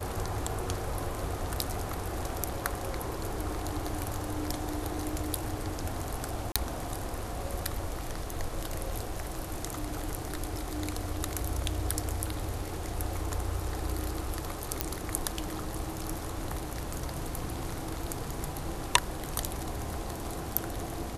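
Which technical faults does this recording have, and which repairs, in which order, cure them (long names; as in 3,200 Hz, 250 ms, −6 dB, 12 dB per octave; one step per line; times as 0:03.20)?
0:06.52–0:06.56: drop-out 36 ms
0:14.81: click −8 dBFS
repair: click removal
repair the gap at 0:06.52, 36 ms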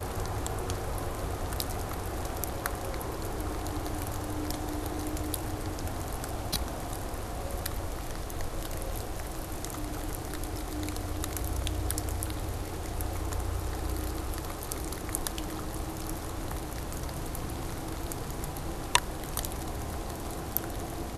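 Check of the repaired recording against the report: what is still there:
none of them is left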